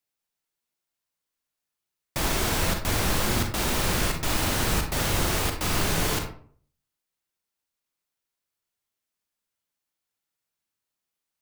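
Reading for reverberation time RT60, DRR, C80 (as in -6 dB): 0.50 s, 4.0 dB, 11.0 dB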